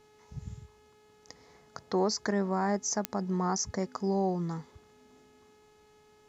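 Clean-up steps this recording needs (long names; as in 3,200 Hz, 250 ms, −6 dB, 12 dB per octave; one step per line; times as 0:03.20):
click removal
hum removal 423.9 Hz, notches 34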